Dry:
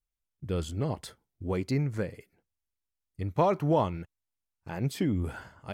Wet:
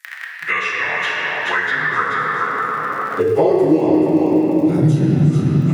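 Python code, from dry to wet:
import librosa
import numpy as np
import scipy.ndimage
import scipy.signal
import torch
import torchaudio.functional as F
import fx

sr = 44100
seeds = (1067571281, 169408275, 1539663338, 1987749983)

p1 = fx.partial_stretch(x, sr, pct=92)
p2 = fx.high_shelf(p1, sr, hz=4700.0, db=7.5)
p3 = fx.dmg_crackle(p2, sr, seeds[0], per_s=36.0, level_db=-41.0)
p4 = fx.filter_sweep_highpass(p3, sr, from_hz=1800.0, to_hz=140.0, start_s=1.35, end_s=4.78, q=7.3)
p5 = p4 + fx.echo_single(p4, sr, ms=431, db=-5.0, dry=0)
p6 = fx.room_shoebox(p5, sr, seeds[1], volume_m3=200.0, walls='hard', distance_m=0.76)
p7 = fx.band_squash(p6, sr, depth_pct=100)
y = p7 * 10.0 ** (1.5 / 20.0)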